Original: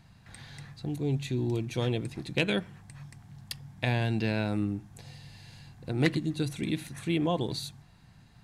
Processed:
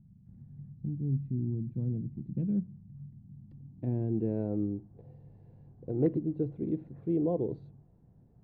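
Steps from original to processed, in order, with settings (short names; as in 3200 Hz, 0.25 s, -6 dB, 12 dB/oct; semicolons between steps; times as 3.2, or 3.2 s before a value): low-pass sweep 200 Hz -> 460 Hz, 3.09–4.51; gain -4.5 dB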